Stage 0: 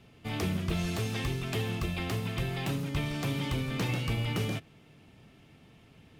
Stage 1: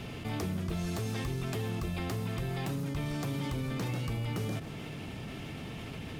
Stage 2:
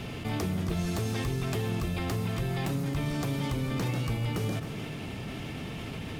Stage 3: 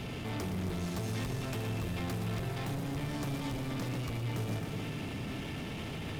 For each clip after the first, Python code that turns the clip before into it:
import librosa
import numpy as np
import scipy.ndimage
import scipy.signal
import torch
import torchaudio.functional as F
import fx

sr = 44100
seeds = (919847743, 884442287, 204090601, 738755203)

y1 = fx.dynamic_eq(x, sr, hz=2800.0, q=1.2, threshold_db=-54.0, ratio=4.0, max_db=-6)
y1 = fx.env_flatten(y1, sr, amount_pct=70)
y1 = F.gain(torch.from_numpy(y1), -5.0).numpy()
y2 = y1 + 10.0 ** (-12.5 / 20.0) * np.pad(y1, (int(268 * sr / 1000.0), 0))[:len(y1)]
y2 = F.gain(torch.from_numpy(y2), 3.5).numpy()
y3 = 10.0 ** (-33.5 / 20.0) * np.tanh(y2 / 10.0 ** (-33.5 / 20.0))
y3 = fx.echo_crushed(y3, sr, ms=119, feedback_pct=80, bits=11, wet_db=-10.5)